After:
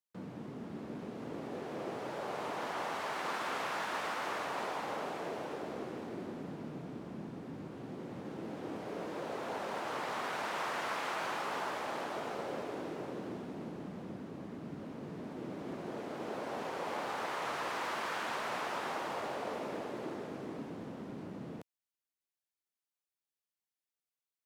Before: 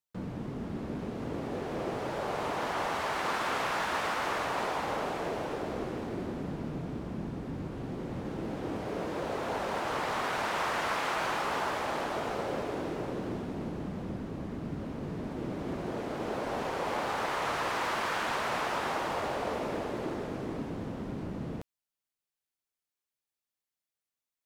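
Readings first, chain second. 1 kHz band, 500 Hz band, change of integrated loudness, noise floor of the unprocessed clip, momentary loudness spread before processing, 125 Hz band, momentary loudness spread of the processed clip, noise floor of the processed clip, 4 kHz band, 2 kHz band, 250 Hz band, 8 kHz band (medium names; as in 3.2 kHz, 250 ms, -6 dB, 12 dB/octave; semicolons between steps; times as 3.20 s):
-5.5 dB, -5.5 dB, -5.5 dB, under -85 dBFS, 7 LU, -9.5 dB, 9 LU, under -85 dBFS, -5.5 dB, -5.5 dB, -6.0 dB, -5.5 dB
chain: high-pass 150 Hz 12 dB/octave; trim -5.5 dB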